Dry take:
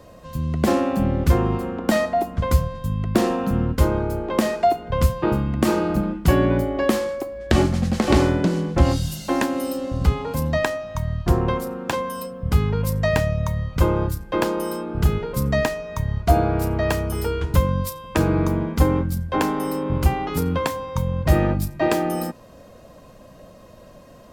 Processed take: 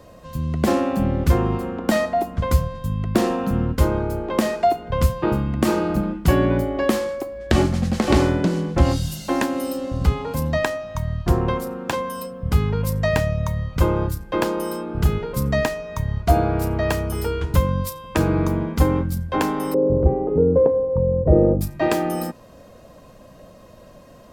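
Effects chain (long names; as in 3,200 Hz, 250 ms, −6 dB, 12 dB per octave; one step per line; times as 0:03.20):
0:19.74–0:21.61: low-pass with resonance 490 Hz, resonance Q 4.9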